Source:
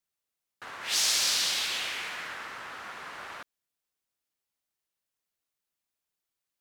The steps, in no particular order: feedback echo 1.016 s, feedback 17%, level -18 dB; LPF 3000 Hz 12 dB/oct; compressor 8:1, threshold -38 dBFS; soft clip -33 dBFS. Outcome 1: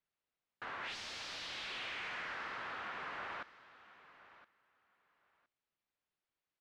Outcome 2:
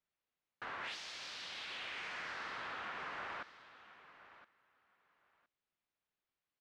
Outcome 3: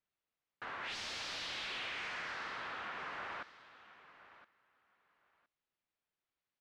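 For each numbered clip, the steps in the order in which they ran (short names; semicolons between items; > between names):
soft clip > feedback echo > compressor > LPF; feedback echo > compressor > LPF > soft clip; feedback echo > soft clip > LPF > compressor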